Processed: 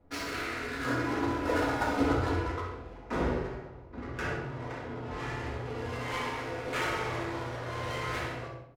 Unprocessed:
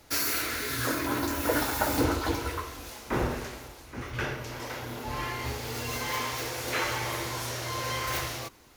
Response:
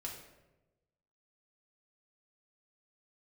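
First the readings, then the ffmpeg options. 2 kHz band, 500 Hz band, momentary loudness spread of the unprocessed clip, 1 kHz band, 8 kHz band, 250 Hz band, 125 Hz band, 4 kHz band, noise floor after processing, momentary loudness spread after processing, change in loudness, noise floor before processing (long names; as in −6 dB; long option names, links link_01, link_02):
−2.5 dB, 0.0 dB, 10 LU, −1.5 dB, −14.0 dB, 0.0 dB, −0.5 dB, −8.0 dB, −47 dBFS, 10 LU, −2.5 dB, −49 dBFS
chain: -filter_complex "[0:a]adynamicsmooth=sensitivity=5.5:basefreq=670,asplit=2[link_01][link_02];[link_02]adelay=65,lowpass=frequency=4700:poles=1,volume=-6.5dB,asplit=2[link_03][link_04];[link_04]adelay=65,lowpass=frequency=4700:poles=1,volume=0.46,asplit=2[link_05][link_06];[link_06]adelay=65,lowpass=frequency=4700:poles=1,volume=0.46,asplit=2[link_07][link_08];[link_08]adelay=65,lowpass=frequency=4700:poles=1,volume=0.46,asplit=2[link_09][link_10];[link_10]adelay=65,lowpass=frequency=4700:poles=1,volume=0.46[link_11];[link_01][link_03][link_05][link_07][link_09][link_11]amix=inputs=6:normalize=0[link_12];[1:a]atrim=start_sample=2205,afade=type=out:start_time=0.24:duration=0.01,atrim=end_sample=11025[link_13];[link_12][link_13]afir=irnorm=-1:irlink=0"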